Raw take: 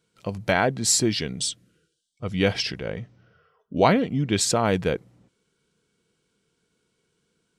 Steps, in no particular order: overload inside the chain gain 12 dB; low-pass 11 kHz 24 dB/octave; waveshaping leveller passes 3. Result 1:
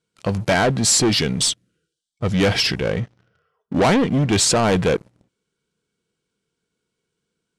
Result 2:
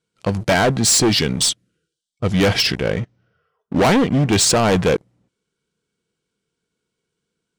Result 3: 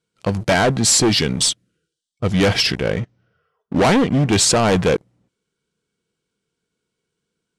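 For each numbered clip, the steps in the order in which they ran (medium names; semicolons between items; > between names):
overload inside the chain > waveshaping leveller > low-pass; waveshaping leveller > low-pass > overload inside the chain; waveshaping leveller > overload inside the chain > low-pass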